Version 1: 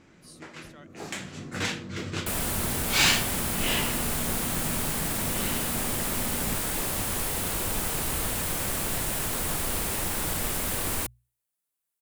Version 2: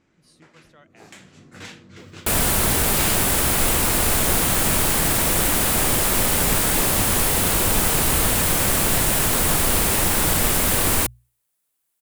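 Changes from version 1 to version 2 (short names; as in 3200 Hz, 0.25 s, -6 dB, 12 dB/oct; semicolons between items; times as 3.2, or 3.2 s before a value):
speech: add LPF 3200 Hz 6 dB/oct; first sound -9.0 dB; second sound +10.0 dB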